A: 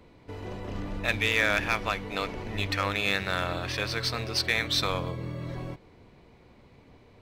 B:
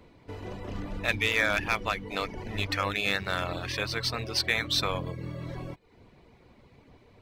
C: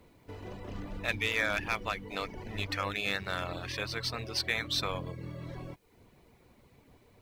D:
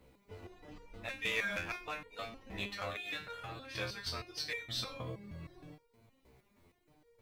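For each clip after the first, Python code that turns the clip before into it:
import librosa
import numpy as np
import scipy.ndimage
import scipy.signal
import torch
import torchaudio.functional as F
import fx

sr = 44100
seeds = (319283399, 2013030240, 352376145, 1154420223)

y1 = fx.dereverb_blind(x, sr, rt60_s=0.53)
y2 = fx.quant_dither(y1, sr, seeds[0], bits=12, dither='triangular')
y2 = y2 * librosa.db_to_amplitude(-4.5)
y3 = y2 + 10.0 ** (-17.0 / 20.0) * np.pad(y2, (int(98 * sr / 1000.0), 0))[:len(y2)]
y3 = fx.resonator_held(y3, sr, hz=6.4, low_hz=65.0, high_hz=470.0)
y3 = y3 * librosa.db_to_amplitude(4.5)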